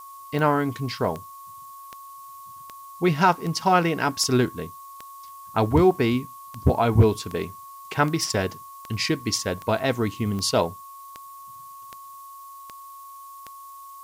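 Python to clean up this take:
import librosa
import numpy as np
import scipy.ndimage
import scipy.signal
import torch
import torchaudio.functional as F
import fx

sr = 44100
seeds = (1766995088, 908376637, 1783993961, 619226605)

y = fx.fix_declick_ar(x, sr, threshold=10.0)
y = fx.notch(y, sr, hz=1100.0, q=30.0)
y = fx.noise_reduce(y, sr, print_start_s=12.7, print_end_s=13.2, reduce_db=26.0)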